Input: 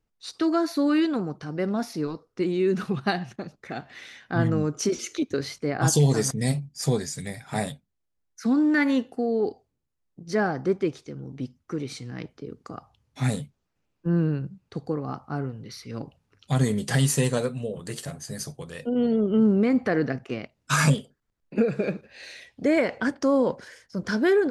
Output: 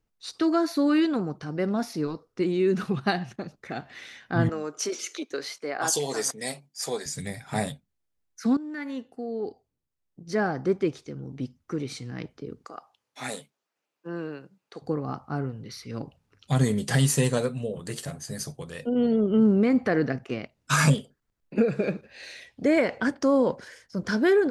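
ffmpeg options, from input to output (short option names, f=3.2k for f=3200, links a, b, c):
-filter_complex "[0:a]asettb=1/sr,asplit=3[a][b][c];[a]atrim=end=4.494[d];[b]atrim=start=4.49:end=7.06,asetpts=PTS-STARTPTS,afade=t=in:d=0.004:c=qsin,afade=t=out:st=2.566:d=0.004:c=qsin,highpass=490[e];[c]atrim=start=7.056[f];[d][e]acrossfade=d=0.004:c1=hsin:c2=qsin[g];[g][f]acrossfade=d=0.004:c1=qsin:c2=hsin,asettb=1/sr,asplit=3[h][i][j];[h]atrim=end=12.654[k];[i]atrim=start=12.65:end=14.82,asetpts=PTS-STARTPTS,afade=t=in:d=0.004:c=qsin,afade=t=out:st=2.166:d=0.004:c=qsin,highpass=470[l];[j]atrim=start=14.816[m];[k][l]acrossfade=d=0.004:c1=hsin:c2=qsin[n];[n][m]acrossfade=d=0.004:c1=qsin:c2=hsin,asplit=2[o][p];[o]atrim=end=8.57,asetpts=PTS-STARTPTS,afade=t=out:st=8.566:d=0.004:c=hsin:silence=0.133352[q];[p]atrim=start=8.57,asetpts=PTS-STARTPTS,afade=t=in:d=2.26:silence=0.133352[r];[q][r]concat=n=2:v=0:a=1"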